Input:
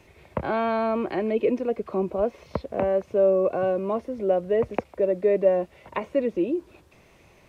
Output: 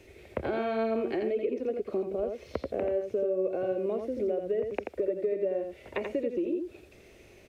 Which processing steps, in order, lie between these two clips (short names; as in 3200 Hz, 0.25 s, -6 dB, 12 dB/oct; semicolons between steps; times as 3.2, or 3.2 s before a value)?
fifteen-band EQ 160 Hz -7 dB, 400 Hz +6 dB, 1000 Hz -12 dB; compressor 6:1, threshold -28 dBFS, peak gain reduction 14.5 dB; on a send: echo 85 ms -5.5 dB